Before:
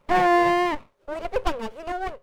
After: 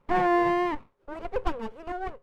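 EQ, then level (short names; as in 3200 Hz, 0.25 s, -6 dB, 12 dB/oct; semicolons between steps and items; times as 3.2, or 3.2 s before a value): bell 610 Hz -8.5 dB 0.27 oct; high shelf 2500 Hz -11.5 dB; -2.0 dB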